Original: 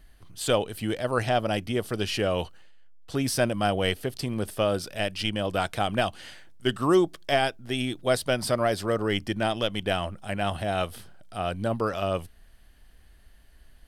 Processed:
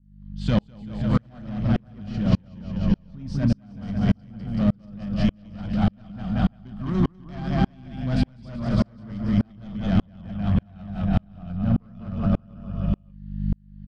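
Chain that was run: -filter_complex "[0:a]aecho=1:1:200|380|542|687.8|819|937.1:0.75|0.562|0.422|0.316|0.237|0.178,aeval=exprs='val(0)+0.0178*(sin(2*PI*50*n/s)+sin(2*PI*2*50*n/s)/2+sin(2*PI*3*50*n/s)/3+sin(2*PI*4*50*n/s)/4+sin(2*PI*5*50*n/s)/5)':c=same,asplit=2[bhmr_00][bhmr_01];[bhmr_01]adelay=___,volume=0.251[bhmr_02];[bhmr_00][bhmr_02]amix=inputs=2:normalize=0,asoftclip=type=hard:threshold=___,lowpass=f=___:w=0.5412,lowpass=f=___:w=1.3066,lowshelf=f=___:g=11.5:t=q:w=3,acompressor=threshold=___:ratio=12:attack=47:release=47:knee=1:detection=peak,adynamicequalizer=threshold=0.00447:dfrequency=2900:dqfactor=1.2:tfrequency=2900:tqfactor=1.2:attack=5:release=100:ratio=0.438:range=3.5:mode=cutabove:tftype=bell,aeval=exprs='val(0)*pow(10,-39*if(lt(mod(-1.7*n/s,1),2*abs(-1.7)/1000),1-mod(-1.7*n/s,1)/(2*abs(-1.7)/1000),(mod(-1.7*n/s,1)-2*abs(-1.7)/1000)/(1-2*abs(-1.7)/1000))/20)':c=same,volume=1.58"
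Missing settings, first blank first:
34, 0.1, 5000, 5000, 280, 0.0891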